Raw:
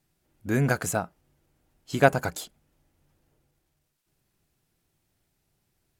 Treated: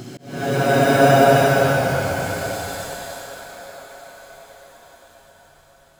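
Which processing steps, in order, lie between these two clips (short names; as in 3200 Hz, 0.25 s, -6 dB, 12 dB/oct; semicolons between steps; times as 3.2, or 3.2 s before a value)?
thinning echo 0.114 s, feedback 70%, high-pass 250 Hz, level -12 dB; in parallel at -3.5 dB: decimation with a swept rate 14×, swing 60% 0.4 Hz; on the sum: Paulstretch 4.3×, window 0.50 s, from 1.78; auto swell 0.274 s; gain +2.5 dB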